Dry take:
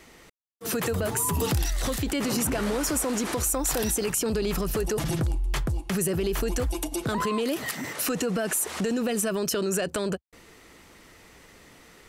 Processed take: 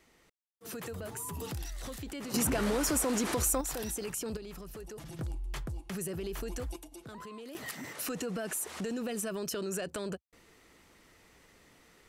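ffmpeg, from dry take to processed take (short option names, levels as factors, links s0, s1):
-af "asetnsamples=n=441:p=0,asendcmd='2.34 volume volume -3dB;3.61 volume volume -10.5dB;4.37 volume volume -18dB;5.19 volume volume -11dB;6.76 volume volume -19dB;7.55 volume volume -9dB',volume=0.211"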